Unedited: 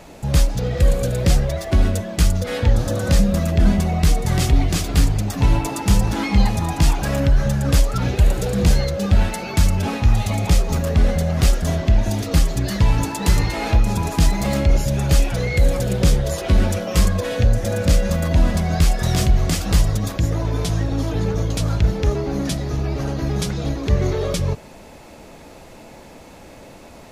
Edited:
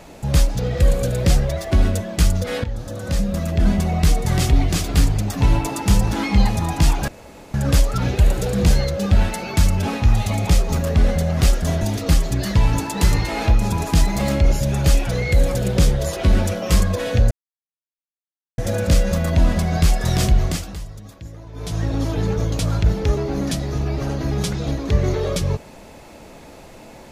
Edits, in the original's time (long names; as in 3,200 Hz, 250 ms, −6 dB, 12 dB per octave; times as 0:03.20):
0:02.64–0:03.96: fade in, from −13.5 dB
0:07.08–0:07.54: fill with room tone
0:11.81–0:12.06: remove
0:17.56: splice in silence 1.27 s
0:19.38–0:20.87: duck −16.5 dB, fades 0.37 s linear